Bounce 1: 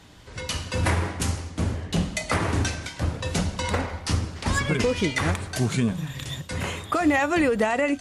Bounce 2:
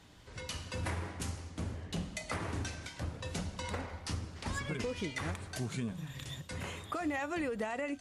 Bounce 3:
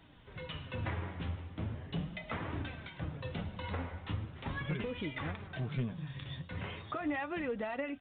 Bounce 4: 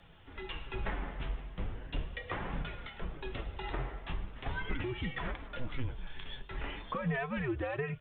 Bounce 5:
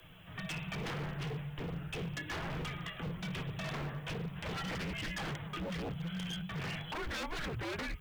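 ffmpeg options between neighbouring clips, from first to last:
ffmpeg -i in.wav -af "acompressor=threshold=-34dB:ratio=1.5,volume=-8.5dB" out.wav
ffmpeg -i in.wav -af "equalizer=frequency=140:width=2.9:gain=6,flanger=delay=2.9:depth=8.8:regen=53:speed=0.39:shape=triangular,aresample=8000,aeval=exprs='clip(val(0),-1,0.0224)':channel_layout=same,aresample=44100,volume=3dB" out.wav
ffmpeg -i in.wav -af "afreqshift=-130,volume=2dB" out.wav
ffmpeg -i in.wav -af "afreqshift=-190,aemphasis=mode=production:type=75fm,aeval=exprs='0.0168*(abs(mod(val(0)/0.0168+3,4)-2)-1)':channel_layout=same,volume=2dB" out.wav

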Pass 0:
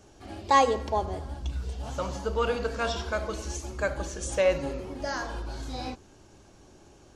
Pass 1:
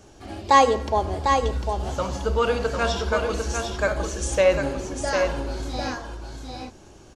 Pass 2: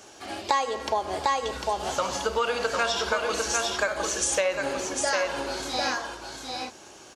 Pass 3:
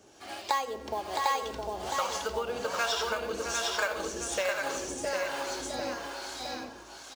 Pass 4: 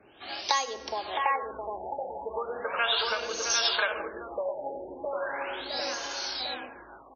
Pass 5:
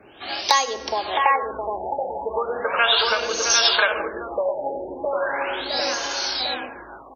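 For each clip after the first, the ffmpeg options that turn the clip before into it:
ffmpeg -i in.wav -af "aecho=1:1:750:0.531,volume=5dB" out.wav
ffmpeg -i in.wav -af "highpass=frequency=960:poles=1,acompressor=threshold=-29dB:ratio=10,volume=7.5dB" out.wav
ffmpeg -i in.wav -filter_complex "[0:a]acrusher=bits=5:mode=log:mix=0:aa=0.000001,aecho=1:1:664|847:0.596|0.15,acrossover=split=520[link_01][link_02];[link_01]aeval=exprs='val(0)*(1-0.7/2+0.7/2*cos(2*PI*1.2*n/s))':channel_layout=same[link_03];[link_02]aeval=exprs='val(0)*(1-0.7/2-0.7/2*cos(2*PI*1.2*n/s))':channel_layout=same[link_04];[link_03][link_04]amix=inputs=2:normalize=0,volume=-3dB" out.wav
ffmpeg -i in.wav -filter_complex "[0:a]acrossover=split=340|1500[link_01][link_02][link_03];[link_01]acompressor=threshold=-53dB:ratio=6[link_04];[link_04][link_02][link_03]amix=inputs=3:normalize=0,crystalizer=i=4:c=0,afftfilt=real='re*lt(b*sr/1024,890*pow(6800/890,0.5+0.5*sin(2*PI*0.37*pts/sr)))':imag='im*lt(b*sr/1024,890*pow(6800/890,0.5+0.5*sin(2*PI*0.37*pts/sr)))':win_size=1024:overlap=0.75" out.wav
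ffmpeg -i in.wav -af "asoftclip=type=hard:threshold=-11.5dB,volume=8.5dB" out.wav

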